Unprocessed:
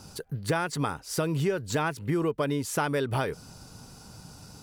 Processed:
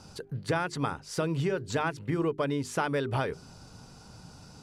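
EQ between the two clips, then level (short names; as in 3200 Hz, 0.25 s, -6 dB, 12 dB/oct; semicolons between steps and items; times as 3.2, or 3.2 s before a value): air absorption 54 m; notches 50/100/150/200/250/300/350/400 Hz; -1.0 dB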